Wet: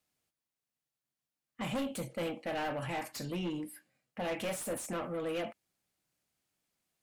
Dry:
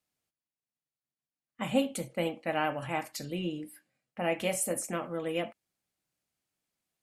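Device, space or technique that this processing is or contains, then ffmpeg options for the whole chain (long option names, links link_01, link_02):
saturation between pre-emphasis and de-emphasis: -af "highshelf=frequency=3700:gain=10.5,asoftclip=type=tanh:threshold=-33.5dB,highshelf=frequency=3700:gain=-10.5,volume=2.5dB"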